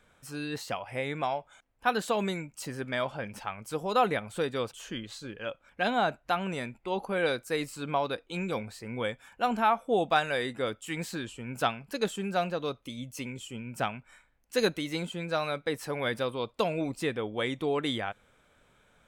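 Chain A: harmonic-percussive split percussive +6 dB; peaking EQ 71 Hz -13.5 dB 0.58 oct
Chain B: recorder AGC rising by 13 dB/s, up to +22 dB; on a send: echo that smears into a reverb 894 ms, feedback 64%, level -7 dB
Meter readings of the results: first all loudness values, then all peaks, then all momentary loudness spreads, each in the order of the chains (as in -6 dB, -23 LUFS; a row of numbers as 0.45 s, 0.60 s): -28.0 LUFS, -29.5 LUFS; -6.0 dBFS, -11.0 dBFS; 11 LU, 6 LU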